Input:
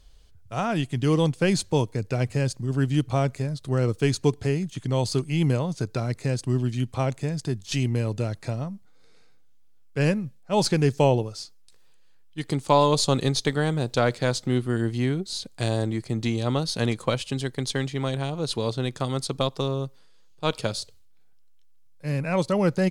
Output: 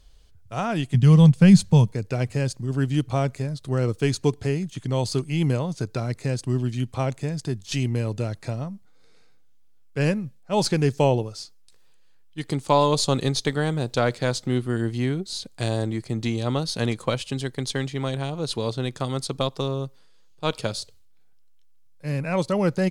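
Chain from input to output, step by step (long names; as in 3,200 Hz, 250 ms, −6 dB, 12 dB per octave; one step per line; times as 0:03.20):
0:00.94–0:01.92: low shelf with overshoot 240 Hz +7 dB, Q 3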